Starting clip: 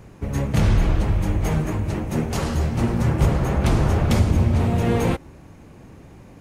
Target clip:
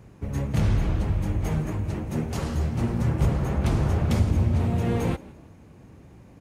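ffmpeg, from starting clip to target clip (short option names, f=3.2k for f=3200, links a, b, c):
-filter_complex "[0:a]highpass=45,lowshelf=f=230:g=4.5,asplit=2[a][b];[b]asplit=3[c][d][e];[c]adelay=168,afreqshift=70,volume=-21.5dB[f];[d]adelay=336,afreqshift=140,volume=-30.6dB[g];[e]adelay=504,afreqshift=210,volume=-39.7dB[h];[f][g][h]amix=inputs=3:normalize=0[i];[a][i]amix=inputs=2:normalize=0,volume=-7dB"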